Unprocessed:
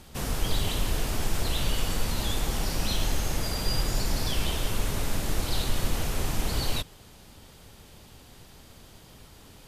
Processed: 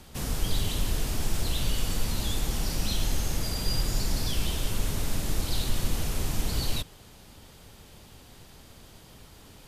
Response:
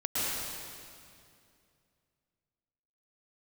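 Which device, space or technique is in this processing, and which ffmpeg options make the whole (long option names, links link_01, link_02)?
one-band saturation: -filter_complex "[0:a]acrossover=split=340|3100[link_01][link_02][link_03];[link_02]asoftclip=type=tanh:threshold=-39.5dB[link_04];[link_01][link_04][link_03]amix=inputs=3:normalize=0"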